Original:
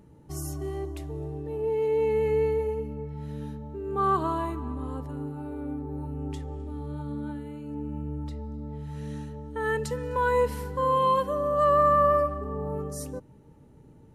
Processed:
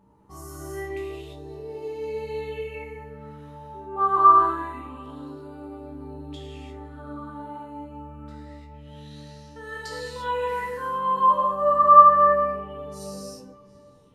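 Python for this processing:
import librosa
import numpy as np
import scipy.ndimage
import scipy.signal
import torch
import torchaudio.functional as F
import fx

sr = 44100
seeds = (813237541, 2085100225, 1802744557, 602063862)

p1 = fx.resonator_bank(x, sr, root=36, chord='fifth', decay_s=0.21)
p2 = fx.rider(p1, sr, range_db=3, speed_s=2.0)
p3 = p2 + fx.echo_tape(p2, sr, ms=733, feedback_pct=34, wet_db=-21.5, lp_hz=4600.0, drive_db=17.0, wow_cents=14, dry=0)
p4 = fx.rev_gated(p3, sr, seeds[0], gate_ms=370, shape='flat', drr_db=-5.5)
p5 = fx.bell_lfo(p4, sr, hz=0.26, low_hz=950.0, high_hz=5100.0, db=16)
y = F.gain(torch.from_numpy(p5), -5.0).numpy()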